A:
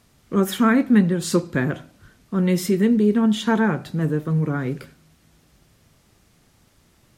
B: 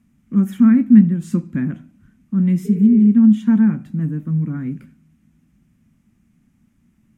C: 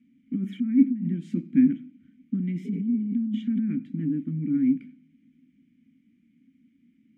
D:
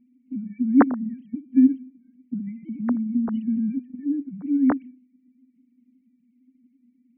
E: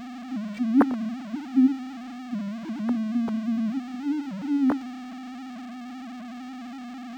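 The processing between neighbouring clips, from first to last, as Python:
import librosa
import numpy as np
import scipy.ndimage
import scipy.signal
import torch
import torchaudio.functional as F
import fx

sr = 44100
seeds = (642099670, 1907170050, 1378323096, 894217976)

y1 = fx.spec_repair(x, sr, seeds[0], start_s=2.68, length_s=0.37, low_hz=240.0, high_hz=2900.0, source='after')
y1 = fx.curve_eq(y1, sr, hz=(120.0, 230.0, 430.0, 2400.0, 4300.0, 6400.0), db=(0, 12, -14, -5, -19, -10))
y1 = y1 * 10.0 ** (-3.5 / 20.0)
y2 = fx.over_compress(y1, sr, threshold_db=-17.0, ratio=-1.0)
y2 = fx.vowel_filter(y2, sr, vowel='i')
y2 = y2 * 10.0 ** (3.5 / 20.0)
y3 = fx.sine_speech(y2, sr)
y3 = y3 * 10.0 ** (2.0 / 20.0)
y4 = y3 + 0.5 * 10.0 ** (-28.0 / 20.0) * np.sign(y3)
y4 = np.interp(np.arange(len(y4)), np.arange(len(y4))[::4], y4[::4])
y4 = y4 * 10.0 ** (-4.0 / 20.0)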